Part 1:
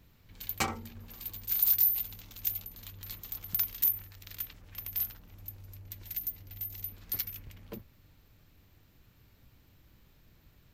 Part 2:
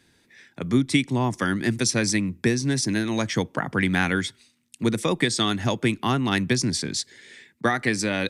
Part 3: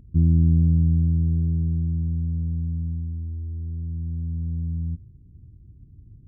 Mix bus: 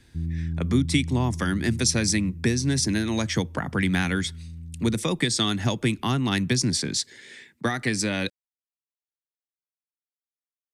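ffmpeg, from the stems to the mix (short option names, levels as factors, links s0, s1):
-filter_complex "[1:a]volume=1.19[s0];[2:a]volume=0.266[s1];[s0][s1]amix=inputs=2:normalize=0,acrossover=split=230|3000[s2][s3][s4];[s3]acompressor=threshold=0.0316:ratio=2[s5];[s2][s5][s4]amix=inputs=3:normalize=0"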